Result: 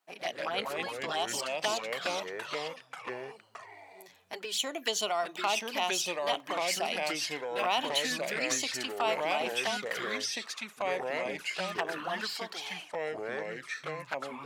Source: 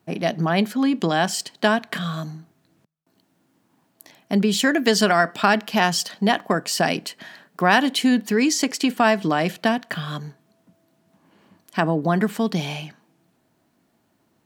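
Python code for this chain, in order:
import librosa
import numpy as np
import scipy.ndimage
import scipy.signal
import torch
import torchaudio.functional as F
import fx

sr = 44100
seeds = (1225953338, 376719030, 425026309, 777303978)

y = scipy.signal.sosfilt(scipy.signal.butter(2, 790.0, 'highpass', fs=sr, output='sos'), x)
y = fx.env_flanger(y, sr, rest_ms=10.2, full_db=-21.5)
y = fx.echo_pitch(y, sr, ms=104, semitones=-3, count=3, db_per_echo=-3.0)
y = F.gain(torch.from_numpy(y), -5.0).numpy()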